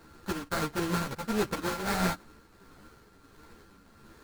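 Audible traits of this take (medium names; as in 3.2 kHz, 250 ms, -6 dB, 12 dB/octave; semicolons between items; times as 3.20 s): a buzz of ramps at a fixed pitch in blocks of 32 samples; tremolo triangle 1.5 Hz, depth 50%; aliases and images of a low sample rate 2.9 kHz, jitter 20%; a shimmering, thickened sound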